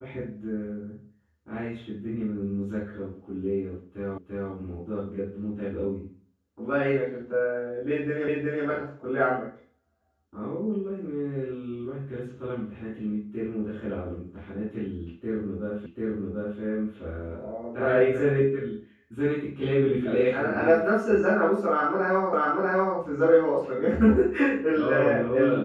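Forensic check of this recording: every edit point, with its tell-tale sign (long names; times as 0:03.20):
0:04.18: the same again, the last 0.34 s
0:08.28: the same again, the last 0.37 s
0:15.86: the same again, the last 0.74 s
0:22.33: the same again, the last 0.64 s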